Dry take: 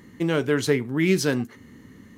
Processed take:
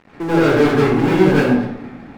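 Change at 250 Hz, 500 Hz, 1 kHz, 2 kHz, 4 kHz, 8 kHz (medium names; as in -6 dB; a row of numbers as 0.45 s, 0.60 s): +9.5 dB, +9.0 dB, +16.0 dB, +7.0 dB, +2.5 dB, no reading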